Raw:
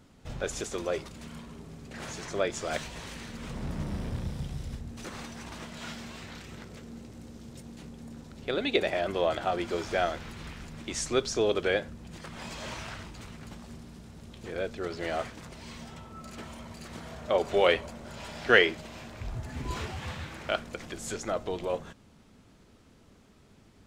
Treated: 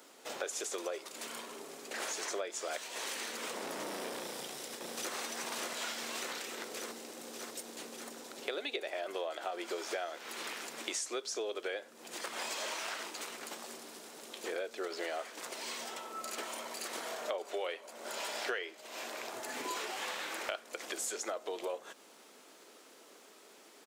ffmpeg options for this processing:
-filter_complex "[0:a]asplit=2[a][b];[b]afade=t=in:st=4.21:d=0.01,afade=t=out:st=5.14:d=0.01,aecho=0:1:590|1180|1770|2360|2950|3540|4130|4720|5310|5900|6490|7080:0.749894|0.562421|0.421815|0.316362|0.237271|0.177953|0.133465|0.100099|0.0750741|0.0563056|0.0422292|0.0316719[c];[a][c]amix=inputs=2:normalize=0,highpass=f=360:w=0.5412,highpass=f=360:w=1.3066,highshelf=f=7.9k:g=11.5,acompressor=threshold=-40dB:ratio=10,volume=5dB"

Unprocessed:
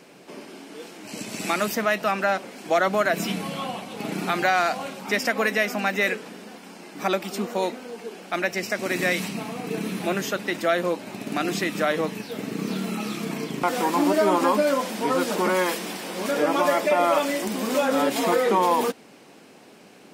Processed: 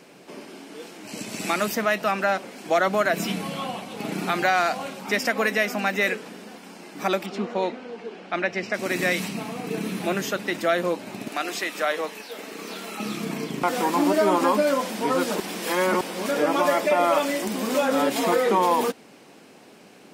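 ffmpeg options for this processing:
-filter_complex "[0:a]asettb=1/sr,asplit=3[a][b][c];[a]atrim=end=7.264[d];[b]atrim=start=7.26:end=8.74,asetpts=PTS-STARTPTS,afade=t=in:d=0.004:c=qsin,afade=t=out:st=1.476:d=0.004:c=qsin,lowpass=3.8k[e];[c]atrim=start=8.736[f];[d][e]acrossfade=d=0.004:c1=hsin:c2=qsin[g];[g][f]acrossfade=d=0.004:c1=qsin:c2=hsin,asettb=1/sr,asplit=3[h][i][j];[h]atrim=end=11.284[k];[i]atrim=start=11.28:end=13,asetpts=PTS-STARTPTS,afade=t=in:d=0.004:c=qsin,afade=t=out:st=1.716:d=0.004:c=qsin,highpass=490[l];[j]atrim=start=12.996[m];[k][l]acrossfade=d=0.004:c1=hsin:c2=qsin[n];[n][m]acrossfade=d=0.004:c1=qsin:c2=hsin,asplit=3[o][p][q];[o]atrim=end=15.402[r];[p]atrim=start=15.398:end=16.012,asetpts=PTS-STARTPTS,areverse[s];[q]atrim=start=16.008[t];[r][s]acrossfade=d=0.004:c1=hsin:c2=hsin[u];[u][t]acrossfade=d=0.004:c1=hsin:c2=hsin"

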